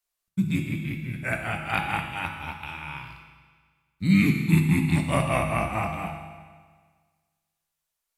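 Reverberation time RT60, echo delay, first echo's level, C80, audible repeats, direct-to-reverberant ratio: 1.6 s, no echo audible, no echo audible, 7.0 dB, no echo audible, 3.0 dB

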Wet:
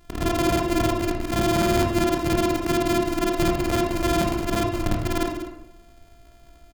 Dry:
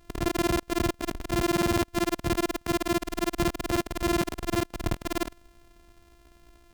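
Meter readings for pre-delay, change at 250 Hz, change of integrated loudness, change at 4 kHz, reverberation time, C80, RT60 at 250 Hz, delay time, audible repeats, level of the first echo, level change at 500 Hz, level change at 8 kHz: 18 ms, +5.5 dB, +5.5 dB, +4.0 dB, 0.90 s, 6.5 dB, 0.95 s, 192 ms, 1, −13.0 dB, +6.5 dB, +3.0 dB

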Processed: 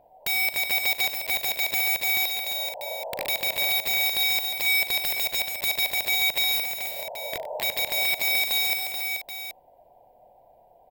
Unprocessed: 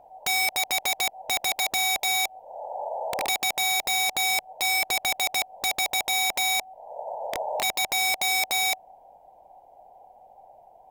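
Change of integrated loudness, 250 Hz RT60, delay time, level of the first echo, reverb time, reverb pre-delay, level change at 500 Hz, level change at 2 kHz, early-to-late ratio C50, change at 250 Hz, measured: +1.0 dB, no reverb audible, 41 ms, −15.5 dB, no reverb audible, no reverb audible, −1.0 dB, +1.5 dB, no reverb audible, −0.5 dB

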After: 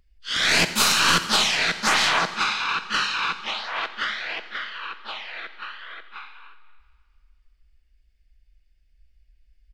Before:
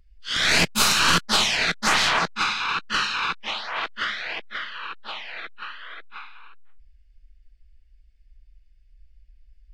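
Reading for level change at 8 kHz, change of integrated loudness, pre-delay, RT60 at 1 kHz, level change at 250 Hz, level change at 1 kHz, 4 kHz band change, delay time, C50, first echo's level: +0.5 dB, +0.5 dB, 12 ms, 1.9 s, −1.0 dB, +0.5 dB, +0.5 dB, 83 ms, 11.5 dB, −17.5 dB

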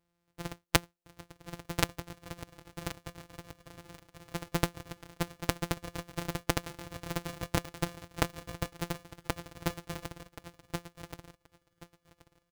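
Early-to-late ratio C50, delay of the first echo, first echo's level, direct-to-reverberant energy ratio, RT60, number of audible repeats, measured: no reverb audible, 1,078 ms, −4.0 dB, no reverb audible, no reverb audible, 3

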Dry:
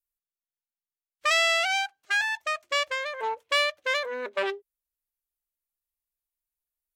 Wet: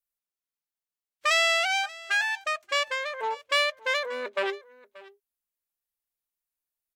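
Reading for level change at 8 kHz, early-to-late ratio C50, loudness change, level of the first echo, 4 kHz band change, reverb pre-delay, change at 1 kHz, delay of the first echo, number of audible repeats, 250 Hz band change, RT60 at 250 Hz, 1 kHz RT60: 0.0 dB, no reverb audible, 0.0 dB, −20.5 dB, 0.0 dB, no reverb audible, 0.0 dB, 582 ms, 1, −0.5 dB, no reverb audible, no reverb audible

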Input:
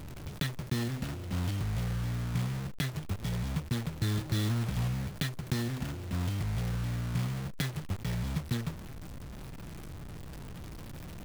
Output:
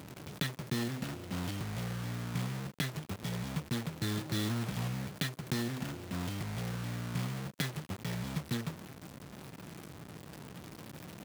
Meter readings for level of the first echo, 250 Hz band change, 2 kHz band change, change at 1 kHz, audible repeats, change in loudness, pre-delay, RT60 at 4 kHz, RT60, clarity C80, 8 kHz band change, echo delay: no echo audible, −1.5 dB, 0.0 dB, 0.0 dB, no echo audible, −3.5 dB, no reverb audible, no reverb audible, no reverb audible, no reverb audible, 0.0 dB, no echo audible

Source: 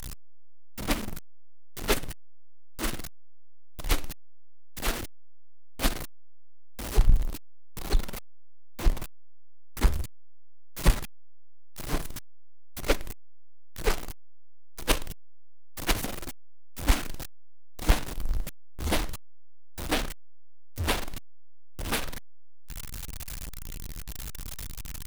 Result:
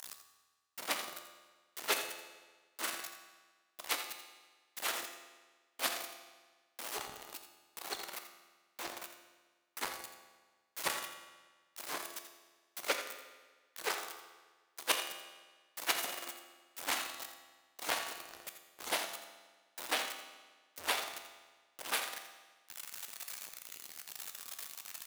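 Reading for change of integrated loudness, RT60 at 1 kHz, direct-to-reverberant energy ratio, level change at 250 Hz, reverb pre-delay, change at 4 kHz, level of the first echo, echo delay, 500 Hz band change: −7.0 dB, 1.4 s, 5.5 dB, −18.0 dB, 11 ms, −3.0 dB, −10.5 dB, 84 ms, −9.0 dB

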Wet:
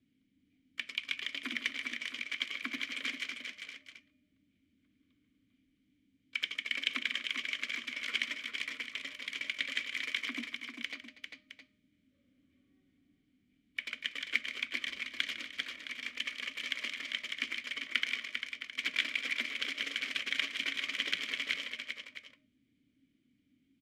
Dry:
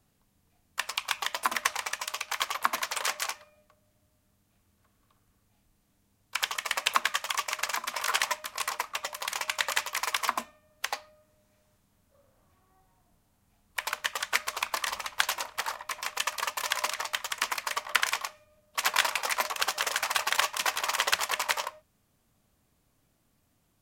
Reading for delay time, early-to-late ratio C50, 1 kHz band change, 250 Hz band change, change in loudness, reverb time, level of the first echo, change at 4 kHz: 154 ms, no reverb audible, −22.5 dB, +5.0 dB, −6.0 dB, no reverb audible, −14.5 dB, −3.5 dB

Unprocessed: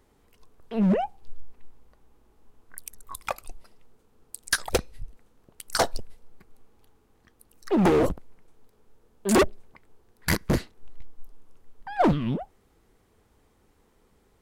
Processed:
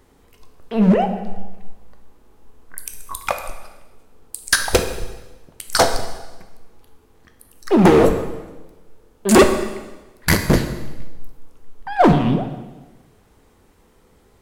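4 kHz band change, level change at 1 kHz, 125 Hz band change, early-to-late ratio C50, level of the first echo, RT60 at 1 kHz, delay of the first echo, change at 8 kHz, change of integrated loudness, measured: +9.0 dB, +9.0 dB, +9.0 dB, 8.0 dB, no echo audible, 1.1 s, no echo audible, +9.0 dB, +8.0 dB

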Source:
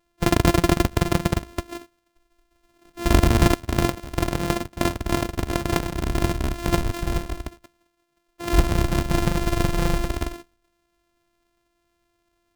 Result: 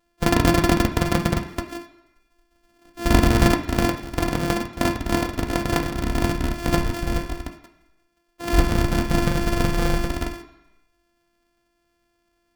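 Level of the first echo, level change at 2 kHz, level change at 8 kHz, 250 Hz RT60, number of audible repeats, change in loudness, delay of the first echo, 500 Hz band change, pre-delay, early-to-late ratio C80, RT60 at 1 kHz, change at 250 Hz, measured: no echo audible, +2.5 dB, 0.0 dB, 0.85 s, no echo audible, +1.0 dB, no echo audible, +1.0 dB, 3 ms, 13.0 dB, 1.0 s, +2.0 dB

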